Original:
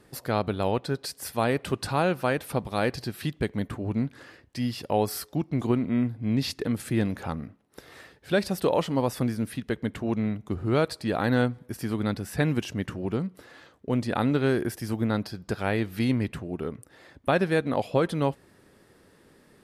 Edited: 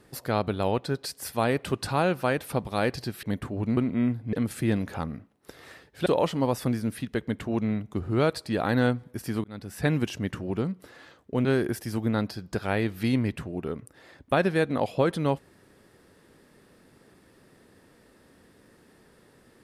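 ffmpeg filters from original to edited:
-filter_complex "[0:a]asplit=7[a][b][c][d][e][f][g];[a]atrim=end=3.232[h];[b]atrim=start=3.508:end=4.052[i];[c]atrim=start=5.718:end=6.282[j];[d]atrim=start=6.618:end=8.352[k];[e]atrim=start=8.608:end=11.99,asetpts=PTS-STARTPTS,afade=t=out:st=3.378:d=0.004:c=hsin[l];[f]atrim=start=11.99:end=14.002,asetpts=PTS-STARTPTS,afade=t=in:d=0.42[m];[g]atrim=start=14.408[n];[h][i]acrossfade=d=0.004:c1=hsin:c2=hsin[o];[o][j]acrossfade=d=0.004:c1=hsin:c2=hsin[p];[p][k]acrossfade=d=0.004:c1=hsin:c2=hsin[q];[l][m]concat=n=2:v=0:a=1[r];[q][r]acrossfade=d=0.004:c1=hsin:c2=hsin[s];[s][n]acrossfade=d=0.004:c1=hsin:c2=hsin"

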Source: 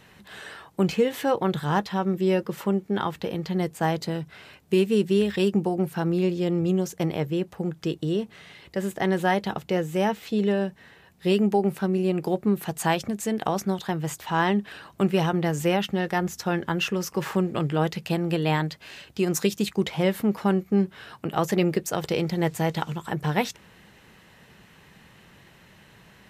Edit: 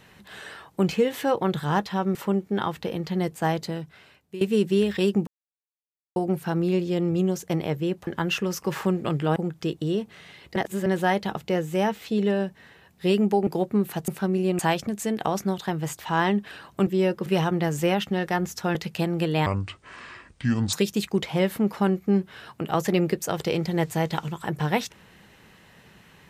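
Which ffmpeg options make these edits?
-filter_complex "[0:a]asplit=16[a][b][c][d][e][f][g][h][i][j][k][l][m][n][o][p];[a]atrim=end=2.152[q];[b]atrim=start=2.538:end=4.8,asetpts=PTS-STARTPTS,afade=t=out:st=1.362:d=0.9:silence=0.141254[r];[c]atrim=start=4.8:end=5.66,asetpts=PTS-STARTPTS,afade=t=in:d=0.004:c=hsin:silence=0.141254,afade=t=out:st=0.856:d=0.004:c=hsin,apad=pad_dur=0.89[s];[d]atrim=start=5.66:end=7.572,asetpts=PTS-STARTPTS,afade=t=in:d=0.004:c=hsin[t];[e]atrim=start=16.568:end=17.862[u];[f]atrim=start=7.568:end=8.772[v];[g]atrim=start=8.768:end=9.072,asetpts=PTS-STARTPTS,areverse[w];[h]atrim=start=9.068:end=11.682[x];[i]atrim=start=12.188:end=12.802[y];[j]atrim=start=11.678:end=12.192[z];[k]atrim=start=12.798:end=15.082[aa];[l]atrim=start=2.148:end=2.542[ab];[m]atrim=start=15.078:end=16.572[ac];[n]atrim=start=17.858:end=18.574[ad];[o]atrim=start=18.57:end=19.37,asetpts=PTS-STARTPTS,asetrate=27783,aresample=44100[ae];[p]atrim=start=19.366[af];[r][s][t]concat=n=3:v=0:a=1[ag];[q][ag]acrossfade=d=0.004:c1=hsin:c2=hsin[ah];[ah][u]acrossfade=d=0.004:c1=hsin:c2=hsin[ai];[ai][v]acrossfade=d=0.004:c1=hsin:c2=hsin[aj];[aj][w]acrossfade=d=0.004:c1=hsin:c2=hsin[ak];[ak][x]acrossfade=d=0.004:c1=hsin:c2=hsin[al];[al][y]acrossfade=d=0.004:c1=hsin:c2=hsin[am];[am][z]acrossfade=d=0.004:c1=hsin:c2=hsin[an];[an][aa]acrossfade=d=0.004:c1=hsin:c2=hsin[ao];[ao][ab]acrossfade=d=0.004:c1=hsin:c2=hsin[ap];[ap][ac]acrossfade=d=0.004:c1=hsin:c2=hsin[aq];[aq][ad]acrossfade=d=0.004:c1=hsin:c2=hsin[ar];[ar][ae]acrossfade=d=0.004:c1=hsin:c2=hsin[as];[as][af]acrossfade=d=0.004:c1=hsin:c2=hsin"

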